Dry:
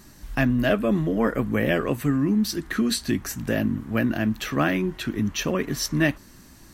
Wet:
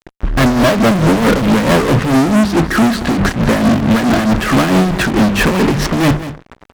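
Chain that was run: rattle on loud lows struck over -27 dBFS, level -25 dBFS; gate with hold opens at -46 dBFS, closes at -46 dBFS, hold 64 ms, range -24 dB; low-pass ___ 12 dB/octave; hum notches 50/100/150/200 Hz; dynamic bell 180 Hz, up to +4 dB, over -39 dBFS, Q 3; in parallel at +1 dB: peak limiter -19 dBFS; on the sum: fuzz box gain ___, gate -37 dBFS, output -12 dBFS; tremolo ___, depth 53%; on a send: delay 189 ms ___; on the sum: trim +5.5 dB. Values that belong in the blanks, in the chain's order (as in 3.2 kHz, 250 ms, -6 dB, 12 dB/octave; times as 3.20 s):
1.5 kHz, 34 dB, 4.6 Hz, -14 dB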